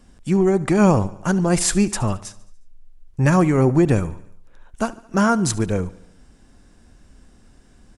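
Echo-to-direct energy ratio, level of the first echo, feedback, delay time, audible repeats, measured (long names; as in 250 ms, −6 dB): −18.0 dB, −19.5 dB, 57%, 72 ms, 4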